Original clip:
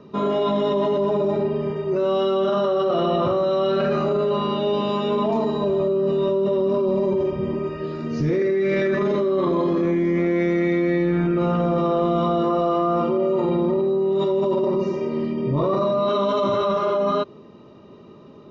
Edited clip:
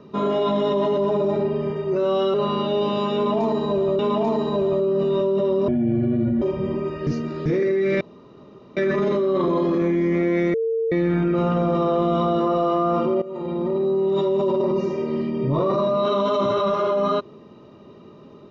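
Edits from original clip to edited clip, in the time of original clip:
0:02.34–0:04.26: remove
0:05.07–0:05.91: repeat, 2 plays
0:06.76–0:07.21: play speed 61%
0:07.86–0:08.25: reverse
0:08.80: splice in room tone 0.76 s
0:10.57–0:10.95: beep over 453 Hz −19.5 dBFS
0:13.25–0:13.93: fade in linear, from −16.5 dB

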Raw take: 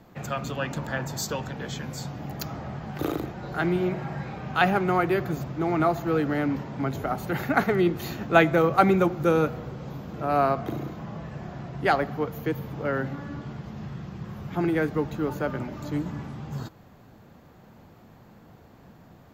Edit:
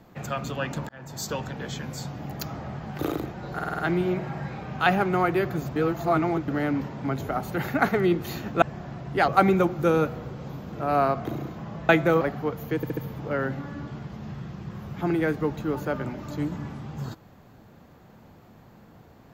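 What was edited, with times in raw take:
0:00.89–0:01.33: fade in
0:03.54: stutter 0.05 s, 6 plays
0:05.51–0:06.23: reverse
0:08.37–0:08.69: swap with 0:11.30–0:11.96
0:12.51: stutter 0.07 s, 4 plays

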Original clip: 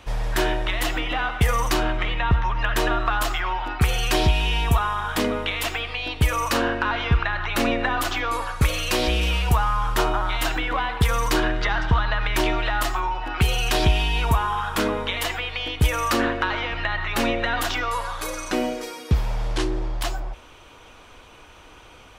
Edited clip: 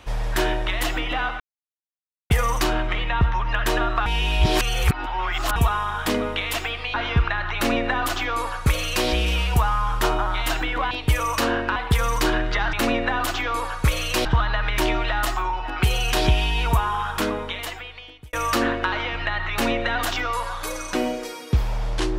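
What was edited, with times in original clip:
0:01.40: splice in silence 0.90 s
0:03.16–0:04.66: reverse
0:06.04–0:06.89: move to 0:10.86
0:07.50–0:09.02: duplicate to 0:11.83
0:14.66–0:15.91: fade out

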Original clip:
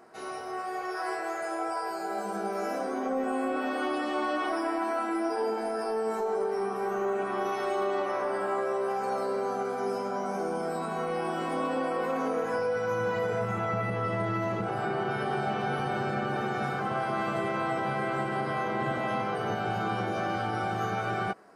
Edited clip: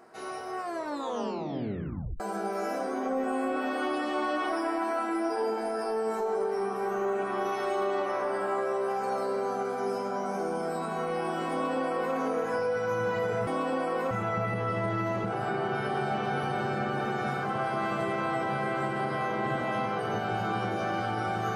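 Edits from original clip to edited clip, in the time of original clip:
0:00.59: tape stop 1.61 s
0:11.51–0:12.15: duplicate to 0:13.47

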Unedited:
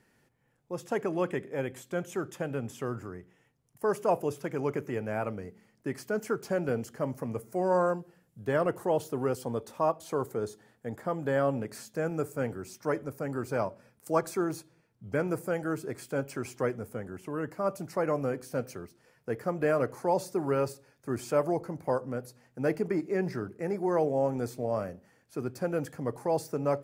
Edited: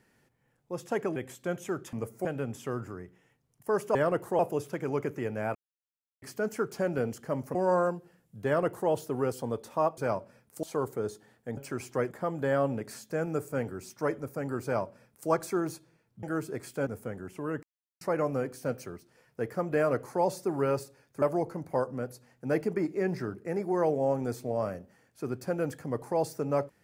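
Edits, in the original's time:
0:01.16–0:01.63: remove
0:05.26–0:05.93: silence
0:07.26–0:07.58: move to 0:02.40
0:08.49–0:08.93: duplicate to 0:04.10
0:13.48–0:14.13: duplicate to 0:10.01
0:15.07–0:15.58: remove
0:16.22–0:16.76: move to 0:10.95
0:17.52–0:17.90: silence
0:21.11–0:21.36: remove

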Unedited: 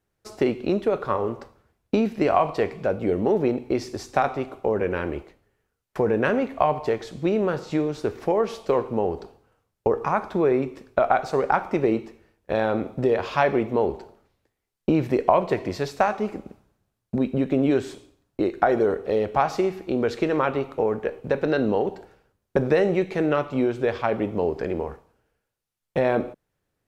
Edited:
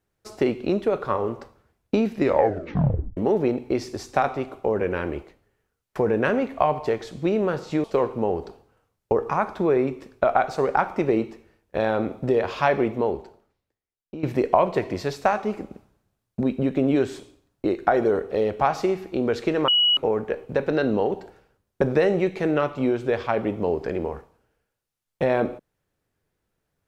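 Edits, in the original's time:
0:02.17: tape stop 1.00 s
0:07.84–0:08.59: remove
0:13.66–0:14.98: fade out quadratic, to −15.5 dB
0:20.43–0:20.72: beep over 2,920 Hz −15.5 dBFS

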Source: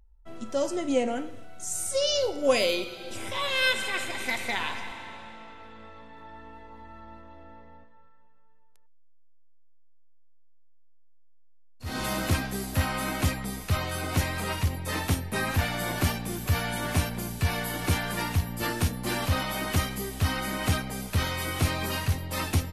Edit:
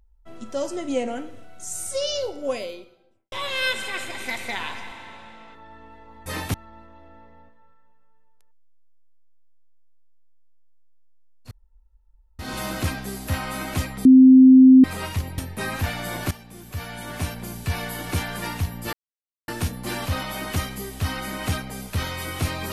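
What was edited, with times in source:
0:01.93–0:03.32: fade out and dull
0:05.55–0:06.18: remove
0:11.86: splice in room tone 0.88 s
0:13.52–0:14.31: beep over 260 Hz −6.5 dBFS
0:14.85–0:15.13: move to 0:06.89
0:16.06–0:17.39: fade in, from −15 dB
0:18.68: splice in silence 0.55 s

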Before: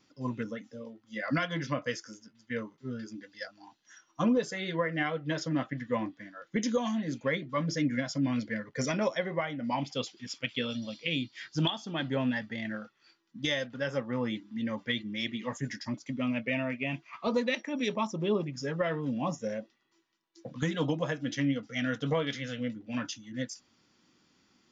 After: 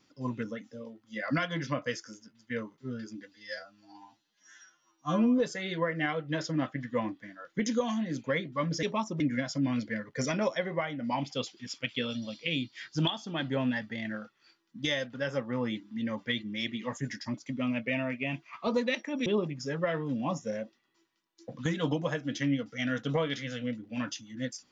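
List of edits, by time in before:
0:03.32–0:04.35: time-stretch 2×
0:17.86–0:18.23: move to 0:07.80

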